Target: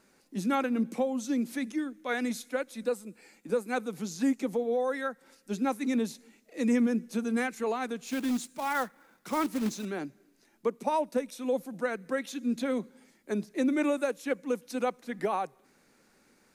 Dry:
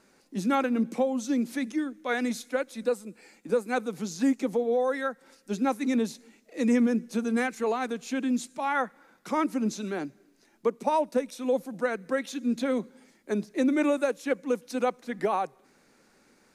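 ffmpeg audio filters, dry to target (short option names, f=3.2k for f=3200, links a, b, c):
-filter_complex "[0:a]crystalizer=i=2:c=0,bass=f=250:g=2,treble=f=4k:g=-7,asettb=1/sr,asplit=3[a][b][c];[a]atrim=end=8.074[d];[b]atrim=start=8.07:end=9.85,asetpts=PTS-STARTPTS,afade=t=in:d=0.004:c=qsin,afade=t=out:st=1.776:d=0.004:c=qsin,acrusher=bits=3:mode=log:mix=0:aa=0.000001[e];[c]atrim=start=9.846[f];[d][e]acrossfade=d=0.004:c1=hsin:c2=qsin[g];[g][f]acrossfade=d=0.004:c1=qsin:c2=hsin,volume=-3.5dB"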